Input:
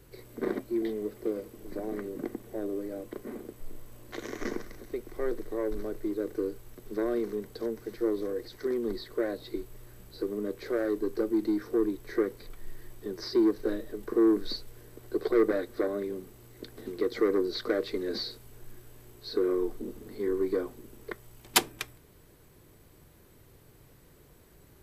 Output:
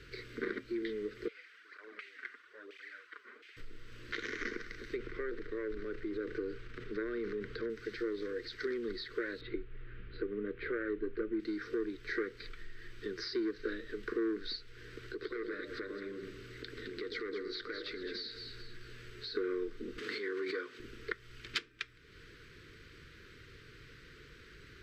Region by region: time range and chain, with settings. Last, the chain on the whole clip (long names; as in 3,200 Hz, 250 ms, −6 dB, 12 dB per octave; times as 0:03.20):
0:01.28–0:03.57: spectral tilt +4.5 dB per octave + auto-filter band-pass saw down 1.4 Hz 720–2,600 Hz + through-zero flanger with one copy inverted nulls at 1 Hz, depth 6.9 ms
0:04.96–0:07.70: low-pass filter 2,300 Hz 6 dB per octave + transient designer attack −1 dB, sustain +6 dB + multiband upward and downward compressor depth 40%
0:09.41–0:11.40: low-pass filter 3,100 Hz 24 dB per octave + spectral tilt −1.5 dB per octave
0:15.11–0:19.35: downward compressor 2.5 to 1, threshold −43 dBFS + delay that swaps between a low-pass and a high-pass 106 ms, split 830 Hz, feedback 56%, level −4 dB
0:19.98–0:20.80: meter weighting curve A + background raised ahead of every attack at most 35 dB per second
whole clip: guitar amp tone stack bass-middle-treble 5-5-5; downward compressor 2.5 to 1, threshold −59 dBFS; drawn EQ curve 190 Hz 0 dB, 460 Hz +9 dB, 760 Hz −21 dB, 1,400 Hz +10 dB, 2,200 Hz +6 dB, 4,900 Hz −1 dB, 11,000 Hz −28 dB; level +15 dB